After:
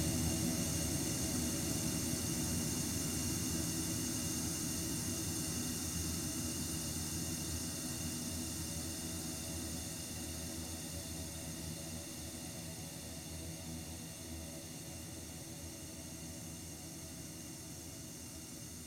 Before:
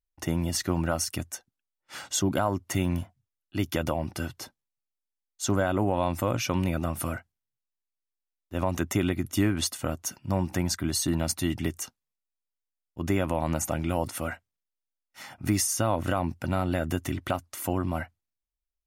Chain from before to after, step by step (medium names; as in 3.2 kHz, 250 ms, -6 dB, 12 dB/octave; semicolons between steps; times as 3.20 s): slow attack 712 ms; echo whose repeats swap between lows and highs 312 ms, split 980 Hz, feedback 55%, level -5 dB; Paulstretch 27×, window 1.00 s, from 11.76 s; trim +10 dB